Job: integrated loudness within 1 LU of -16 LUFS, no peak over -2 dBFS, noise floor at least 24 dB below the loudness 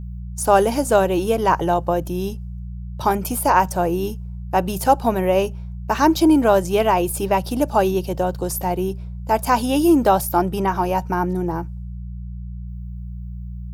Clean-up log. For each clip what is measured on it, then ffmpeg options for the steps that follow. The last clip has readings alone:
hum 60 Hz; harmonics up to 180 Hz; hum level -29 dBFS; loudness -19.5 LUFS; peak -2.5 dBFS; loudness target -16.0 LUFS
-> -af "bandreject=f=60:t=h:w=4,bandreject=f=120:t=h:w=4,bandreject=f=180:t=h:w=4"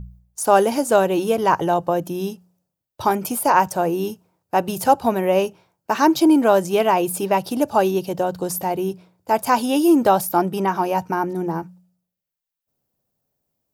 hum none; loudness -19.5 LUFS; peak -2.5 dBFS; loudness target -16.0 LUFS
-> -af "volume=3.5dB,alimiter=limit=-2dB:level=0:latency=1"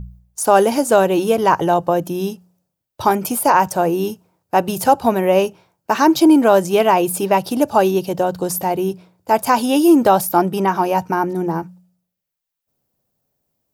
loudness -16.5 LUFS; peak -2.0 dBFS; noise floor -80 dBFS

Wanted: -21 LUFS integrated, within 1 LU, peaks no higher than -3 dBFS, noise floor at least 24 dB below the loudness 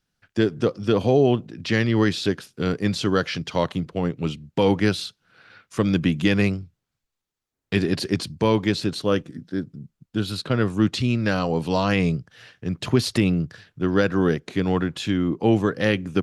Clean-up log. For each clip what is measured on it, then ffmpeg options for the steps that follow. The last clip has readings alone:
loudness -23.0 LUFS; peak -7.5 dBFS; loudness target -21.0 LUFS
-> -af "volume=2dB"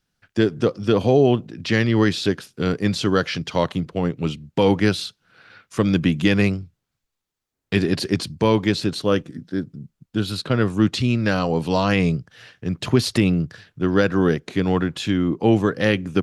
loudness -21.0 LUFS; peak -5.5 dBFS; noise floor -80 dBFS

